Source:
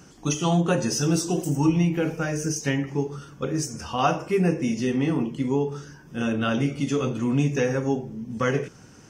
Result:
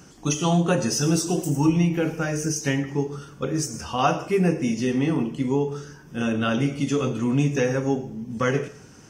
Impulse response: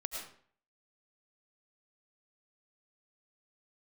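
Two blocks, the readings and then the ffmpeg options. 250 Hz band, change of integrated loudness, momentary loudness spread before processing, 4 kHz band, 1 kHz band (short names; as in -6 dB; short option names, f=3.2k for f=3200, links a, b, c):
+1.0 dB, +1.0 dB, 7 LU, +1.5 dB, +1.0 dB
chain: -filter_complex "[0:a]asplit=2[a][b];[1:a]atrim=start_sample=2205,highshelf=f=4.4k:g=11.5[c];[b][c]afir=irnorm=-1:irlink=0,volume=-16.5dB[d];[a][d]amix=inputs=2:normalize=0"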